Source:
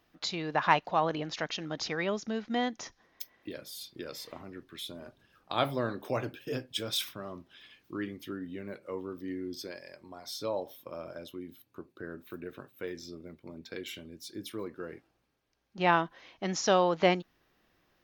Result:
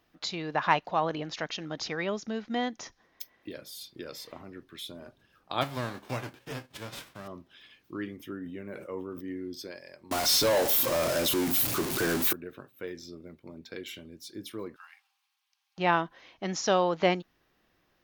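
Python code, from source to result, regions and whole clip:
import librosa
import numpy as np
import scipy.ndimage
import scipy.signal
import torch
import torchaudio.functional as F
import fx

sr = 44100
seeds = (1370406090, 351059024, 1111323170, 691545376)

y = fx.envelope_flatten(x, sr, power=0.3, at=(5.61, 7.26), fade=0.02)
y = fx.lowpass(y, sr, hz=1400.0, slope=6, at=(5.61, 7.26), fade=0.02)
y = fx.chain(y, sr, fx.peak_eq(hz=4300.0, db=-11.5, octaves=0.38),
    fx.sustainer(db_per_s=55.0), at=(8.16, 9.37))
y = fx.chain(y, sr, fx.zero_step(step_db=-40.0),
    fx.high_shelf(hz=4100.0, db=11.5),
    fx.leveller(passes=3), at=(10.11, 12.33))
y = fx.chain(y, sr, fx.cheby_ripple_highpass(hz=760.0, ripple_db=6),
    fx.high_shelf(hz=2500.0, db=11.0), at=(14.76, 15.78))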